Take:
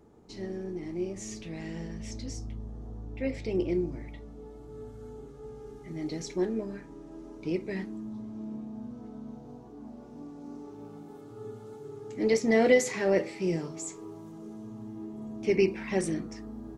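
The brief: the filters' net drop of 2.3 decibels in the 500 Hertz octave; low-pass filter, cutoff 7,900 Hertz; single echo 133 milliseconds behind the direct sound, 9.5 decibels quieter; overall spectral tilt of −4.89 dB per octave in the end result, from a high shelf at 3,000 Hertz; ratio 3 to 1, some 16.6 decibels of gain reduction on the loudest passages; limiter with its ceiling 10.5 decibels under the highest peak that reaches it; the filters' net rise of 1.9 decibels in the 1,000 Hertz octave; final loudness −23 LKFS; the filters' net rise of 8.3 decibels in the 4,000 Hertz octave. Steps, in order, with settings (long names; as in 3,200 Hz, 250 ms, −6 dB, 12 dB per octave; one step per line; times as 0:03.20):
low-pass filter 7,900 Hz
parametric band 500 Hz −4 dB
parametric band 1,000 Hz +4.5 dB
high-shelf EQ 3,000 Hz +3.5 dB
parametric band 4,000 Hz +8.5 dB
downward compressor 3 to 1, threshold −41 dBFS
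brickwall limiter −36.5 dBFS
single-tap delay 133 ms −9.5 dB
level +22.5 dB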